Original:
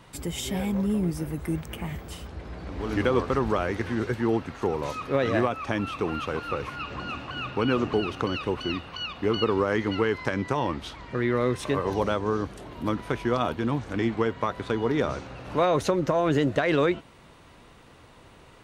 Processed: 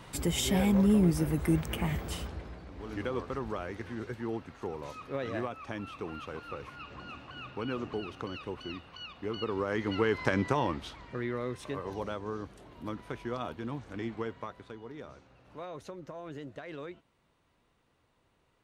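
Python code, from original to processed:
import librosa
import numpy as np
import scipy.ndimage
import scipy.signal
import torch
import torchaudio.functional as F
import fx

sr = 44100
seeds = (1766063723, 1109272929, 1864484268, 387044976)

y = fx.gain(x, sr, db=fx.line((2.21, 2.0), (2.69, -11.0), (9.36, -11.0), (10.34, 0.0), (11.43, -11.0), (14.31, -11.0), (14.81, -20.0)))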